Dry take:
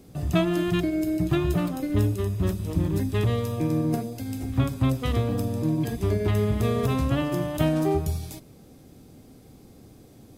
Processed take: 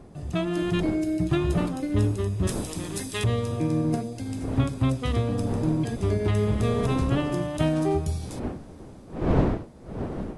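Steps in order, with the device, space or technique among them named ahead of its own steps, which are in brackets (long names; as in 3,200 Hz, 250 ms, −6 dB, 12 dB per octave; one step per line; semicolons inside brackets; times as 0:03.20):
0:02.47–0:03.24: spectral tilt +4 dB per octave
smartphone video outdoors (wind on the microphone 350 Hz; automatic gain control gain up to 7 dB; level −7 dB; AAC 96 kbit/s 24,000 Hz)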